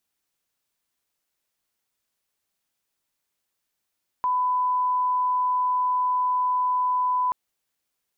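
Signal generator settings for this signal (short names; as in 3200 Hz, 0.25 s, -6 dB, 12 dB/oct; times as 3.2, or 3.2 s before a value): line-up tone -20 dBFS 3.08 s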